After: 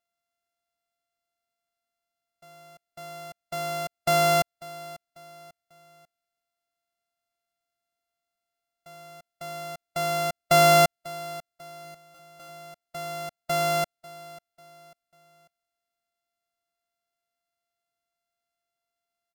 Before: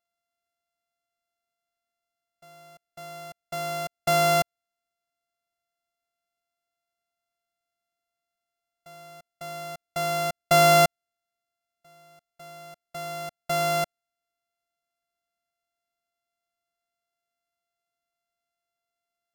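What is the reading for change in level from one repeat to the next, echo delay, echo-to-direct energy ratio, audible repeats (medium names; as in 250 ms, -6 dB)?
-7.5 dB, 544 ms, -18.5 dB, 3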